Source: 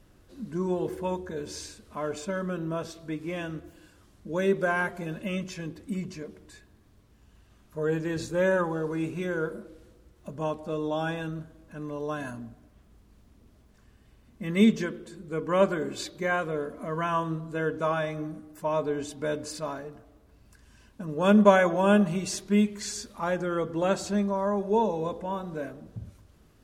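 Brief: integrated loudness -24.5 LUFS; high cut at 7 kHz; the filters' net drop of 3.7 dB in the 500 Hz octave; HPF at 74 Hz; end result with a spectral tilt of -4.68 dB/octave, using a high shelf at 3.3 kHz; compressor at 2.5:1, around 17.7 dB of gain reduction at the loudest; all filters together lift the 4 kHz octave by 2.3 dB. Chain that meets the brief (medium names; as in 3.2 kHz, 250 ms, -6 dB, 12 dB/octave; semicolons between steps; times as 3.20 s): high-pass 74 Hz; low-pass 7 kHz; peaking EQ 500 Hz -4.5 dB; treble shelf 3.3 kHz -4.5 dB; peaking EQ 4 kHz +6.5 dB; compression 2.5:1, threshold -44 dBFS; trim +18.5 dB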